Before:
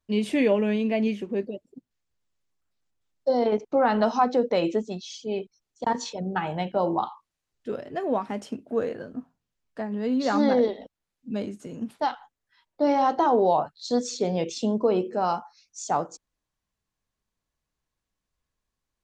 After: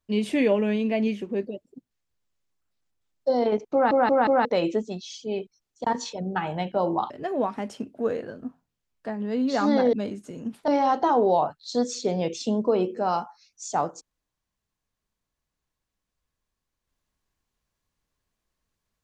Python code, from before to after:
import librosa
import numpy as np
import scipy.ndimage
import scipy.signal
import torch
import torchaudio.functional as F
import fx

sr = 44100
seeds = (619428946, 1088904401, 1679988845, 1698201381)

y = fx.edit(x, sr, fx.stutter_over(start_s=3.73, slice_s=0.18, count=4),
    fx.cut(start_s=7.1, length_s=0.72),
    fx.cut(start_s=10.65, length_s=0.64),
    fx.cut(start_s=12.04, length_s=0.8), tone=tone)